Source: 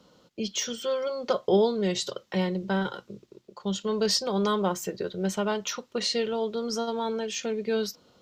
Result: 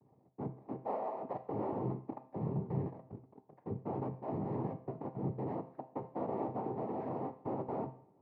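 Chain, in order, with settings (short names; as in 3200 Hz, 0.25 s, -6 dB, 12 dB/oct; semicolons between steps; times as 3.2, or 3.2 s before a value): inverse Chebyshev low-pass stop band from 3100 Hz, stop band 80 dB; limiter -24.5 dBFS, peak gain reduction 12 dB; noise vocoder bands 6; resonator 130 Hz, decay 0.43 s, harmonics all, mix 60%; two-slope reverb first 0.55 s, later 1.5 s, from -18 dB, DRR 10.5 dB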